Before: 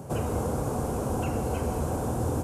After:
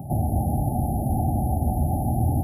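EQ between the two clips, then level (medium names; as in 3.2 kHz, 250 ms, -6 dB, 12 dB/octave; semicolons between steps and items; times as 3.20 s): brick-wall FIR band-stop 870–10000 Hz; band-stop 530 Hz, Q 12; static phaser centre 1.7 kHz, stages 6; +8.5 dB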